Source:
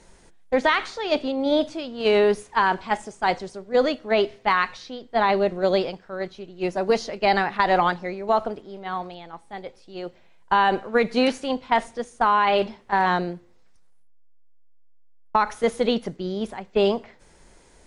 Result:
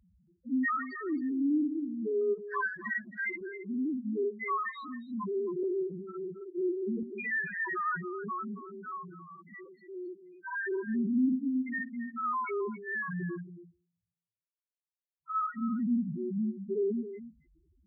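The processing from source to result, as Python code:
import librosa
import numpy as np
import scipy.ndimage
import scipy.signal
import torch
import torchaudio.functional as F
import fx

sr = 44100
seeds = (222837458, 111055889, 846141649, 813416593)

p1 = fx.spec_dilate(x, sr, span_ms=120)
p2 = scipy.signal.sosfilt(scipy.signal.butter(2, 73.0, 'highpass', fs=sr, output='sos'), p1)
p3 = fx.band_shelf(p2, sr, hz=660.0, db=-15.5, octaves=1.3)
p4 = 10.0 ** (-18.0 / 20.0) * np.tanh(p3 / 10.0 ** (-18.0 / 20.0))
p5 = p3 + (p4 * librosa.db_to_amplitude(-8.0))
p6 = fx.spec_topn(p5, sr, count=1)
p7 = fx.transient(p6, sr, attack_db=8, sustain_db=-11, at=(2.21, 3.41))
p8 = fx.dispersion(p7, sr, late='highs', ms=41.0, hz=910.0, at=(5.63, 7.03))
p9 = p8 + fx.echo_single(p8, sr, ms=272, db=-13.0, dry=0)
y = p9 * librosa.db_to_amplitude(-3.0)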